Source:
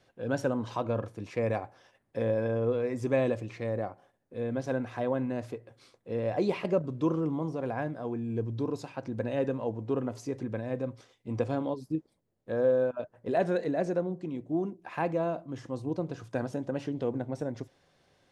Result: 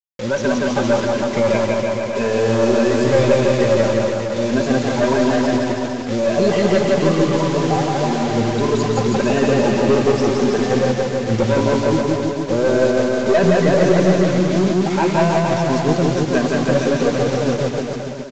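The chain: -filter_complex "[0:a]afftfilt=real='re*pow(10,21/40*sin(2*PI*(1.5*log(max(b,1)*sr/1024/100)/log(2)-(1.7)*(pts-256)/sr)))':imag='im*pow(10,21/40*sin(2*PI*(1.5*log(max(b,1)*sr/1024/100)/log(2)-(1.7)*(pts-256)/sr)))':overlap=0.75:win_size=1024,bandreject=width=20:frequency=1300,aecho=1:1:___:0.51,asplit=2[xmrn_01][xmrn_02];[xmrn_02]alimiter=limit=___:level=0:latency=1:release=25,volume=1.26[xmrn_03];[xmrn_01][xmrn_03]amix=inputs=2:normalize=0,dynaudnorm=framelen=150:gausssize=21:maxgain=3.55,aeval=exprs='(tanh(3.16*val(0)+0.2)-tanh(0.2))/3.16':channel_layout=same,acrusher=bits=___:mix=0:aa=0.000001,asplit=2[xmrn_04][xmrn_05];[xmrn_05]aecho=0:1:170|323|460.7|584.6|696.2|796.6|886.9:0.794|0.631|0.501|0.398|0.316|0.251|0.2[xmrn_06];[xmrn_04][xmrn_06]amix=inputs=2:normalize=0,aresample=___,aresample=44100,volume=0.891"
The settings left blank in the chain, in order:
5.1, 0.178, 4, 16000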